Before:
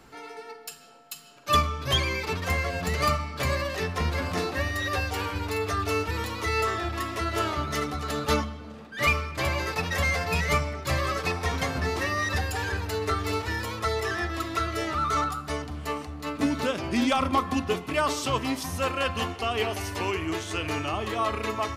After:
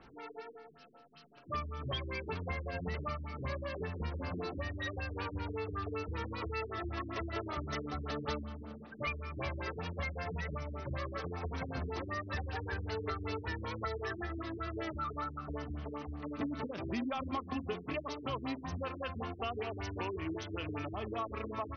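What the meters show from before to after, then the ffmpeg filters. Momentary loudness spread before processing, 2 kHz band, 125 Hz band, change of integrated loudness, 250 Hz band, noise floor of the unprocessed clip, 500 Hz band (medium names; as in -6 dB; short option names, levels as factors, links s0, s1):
7 LU, -13.5 dB, -9.5 dB, -12.0 dB, -9.5 dB, -44 dBFS, -10.5 dB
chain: -af "acompressor=threshold=0.0355:ratio=6,afftfilt=real='re*lt(b*sr/1024,390*pow(6500/390,0.5+0.5*sin(2*PI*5.2*pts/sr)))':imag='im*lt(b*sr/1024,390*pow(6500/390,0.5+0.5*sin(2*PI*5.2*pts/sr)))':win_size=1024:overlap=0.75,volume=0.596"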